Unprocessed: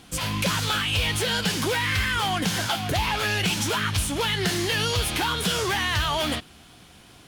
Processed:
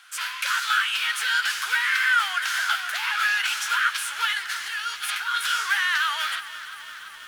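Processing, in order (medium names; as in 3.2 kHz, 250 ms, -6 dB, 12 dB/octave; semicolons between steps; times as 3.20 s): 4.33–5.38 s: compressor with a negative ratio -28 dBFS, ratio -0.5; ladder high-pass 1.3 kHz, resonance 65%; bit-crushed delay 338 ms, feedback 80%, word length 9-bit, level -15 dB; trim +8.5 dB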